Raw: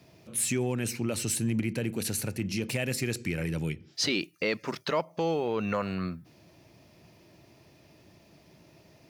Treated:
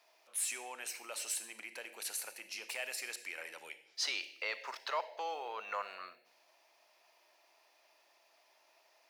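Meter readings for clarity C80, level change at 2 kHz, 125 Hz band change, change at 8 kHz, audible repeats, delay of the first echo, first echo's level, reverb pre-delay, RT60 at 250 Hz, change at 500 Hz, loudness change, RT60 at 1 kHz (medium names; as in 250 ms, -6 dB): 15.0 dB, -5.5 dB, under -40 dB, -6.5 dB, no echo, no echo, no echo, 33 ms, 0.80 s, -15.0 dB, -9.5 dB, 0.80 s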